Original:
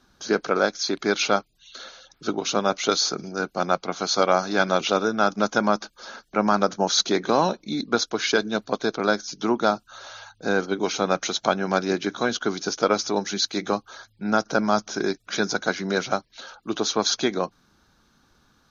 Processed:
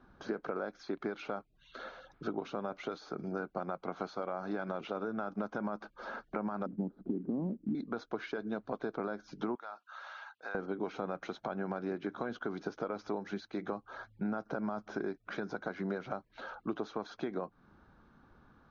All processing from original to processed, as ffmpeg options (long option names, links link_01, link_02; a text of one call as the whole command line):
ffmpeg -i in.wav -filter_complex "[0:a]asettb=1/sr,asplit=3[link_01][link_02][link_03];[link_01]atrim=end=6.664[link_04];[link_02]atrim=start=6.66:end=7.75,asetpts=PTS-STARTPTS,afade=type=in:duration=0.004:curve=qsin,afade=type=out:start_time=1.086:duration=0.004:curve=qsin,lowpass=frequency=250:width_type=q:width=2.6,acrusher=bits=8:mode=log:mix=0:aa=0.000001[link_05];[link_03]atrim=start=7.746[link_06];[link_04][link_05]acrossfade=duration=0.004:curve1=hsin:curve2=qsin[link_07];[link_07][link_06]acrossfade=duration=0.004:curve1=qsin:curve2=hsin,asettb=1/sr,asplit=3[link_08][link_09][link_10];[link_08]atrim=end=9.554[link_11];[link_09]atrim=start=9.55:end=10.55,asetpts=PTS-STARTPTS,afade=type=in:duration=0.004:curve=qsin,afade=type=out:start_time=0.996:duration=0.004:curve=qsin,highpass=1200,acompressor=threshold=-36dB:ratio=3:attack=3.2:release=140:knee=1:detection=peak[link_12];[link_10]atrim=start=10.546[link_13];[link_11][link_12]acrossfade=duration=0.004:curve1=hsin:curve2=qsin[link_14];[link_14][link_13]acrossfade=duration=0.004:curve1=qsin:curve2=hsin,alimiter=limit=-14.5dB:level=0:latency=1:release=69,acompressor=threshold=-34dB:ratio=6,lowpass=1500,volume=1dB" out.wav